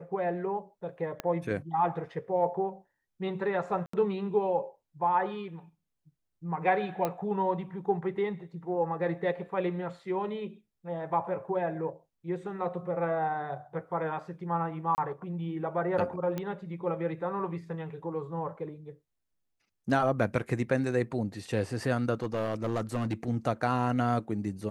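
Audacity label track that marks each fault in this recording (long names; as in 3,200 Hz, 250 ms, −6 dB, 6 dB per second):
1.200000	1.200000	click −18 dBFS
3.860000	3.930000	drop-out 74 ms
7.050000	7.050000	click −16 dBFS
14.950000	14.980000	drop-out 29 ms
16.380000	16.380000	click −20 dBFS
22.220000	23.140000	clipping −25 dBFS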